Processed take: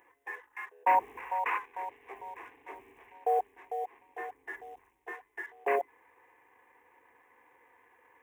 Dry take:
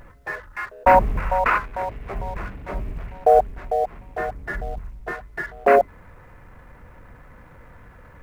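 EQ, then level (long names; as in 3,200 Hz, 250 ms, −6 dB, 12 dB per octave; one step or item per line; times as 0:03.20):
high-pass filter 450 Hz 12 dB per octave
phaser with its sweep stopped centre 910 Hz, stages 8
−8.0 dB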